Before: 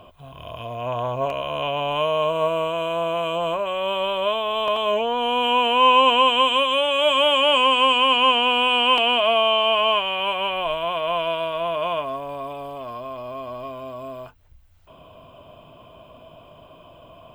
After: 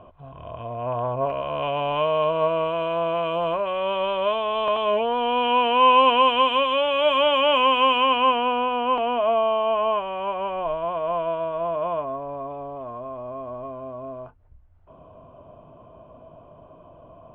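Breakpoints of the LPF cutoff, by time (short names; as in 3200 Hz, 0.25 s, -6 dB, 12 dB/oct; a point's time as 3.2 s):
1.17 s 1500 Hz
1.76 s 2500 Hz
7.94 s 2500 Hz
8.74 s 1100 Hz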